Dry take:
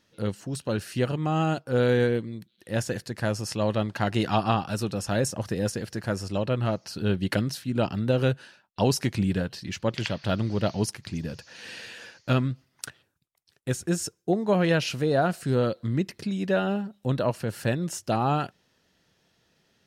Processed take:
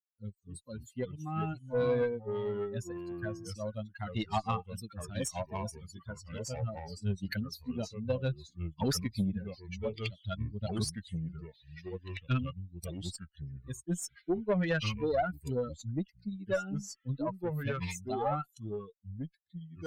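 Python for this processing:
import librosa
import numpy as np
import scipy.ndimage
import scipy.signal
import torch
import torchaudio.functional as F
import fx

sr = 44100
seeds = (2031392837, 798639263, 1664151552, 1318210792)

y = fx.bin_expand(x, sr, power=3.0)
y = fx.tube_stage(y, sr, drive_db=21.0, bias=0.25)
y = fx.echo_pitch(y, sr, ms=206, semitones=-3, count=2, db_per_echo=-6.0)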